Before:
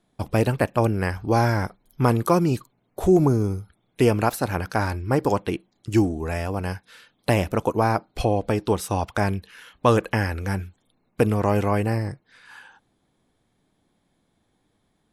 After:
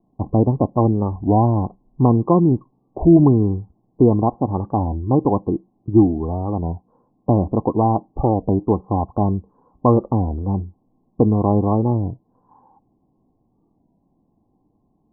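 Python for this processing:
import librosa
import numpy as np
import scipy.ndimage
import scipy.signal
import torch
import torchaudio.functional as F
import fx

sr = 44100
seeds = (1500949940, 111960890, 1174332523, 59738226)

y = scipy.signal.sosfilt(scipy.signal.cheby1(6, 6, 1100.0, 'lowpass', fs=sr, output='sos'), x)
y = fx.low_shelf(y, sr, hz=360.0, db=5.5)
y = fx.record_warp(y, sr, rpm=33.33, depth_cents=160.0)
y = F.gain(torch.from_numpy(y), 4.5).numpy()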